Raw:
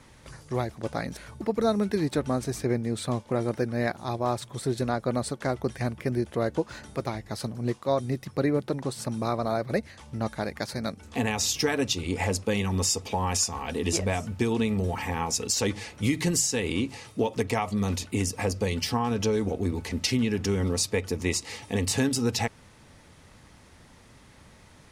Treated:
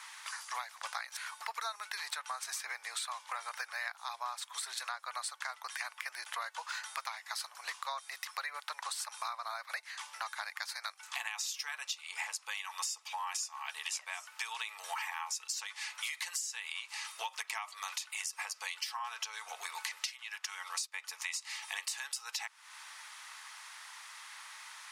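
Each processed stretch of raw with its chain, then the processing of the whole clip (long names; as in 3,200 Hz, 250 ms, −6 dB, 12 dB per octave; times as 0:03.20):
0:20.09–0:20.94: high-pass filter 460 Hz + expander for the loud parts, over −49 dBFS
whole clip: Butterworth high-pass 950 Hz 36 dB per octave; downward compressor 10 to 1, threshold −45 dBFS; level +9 dB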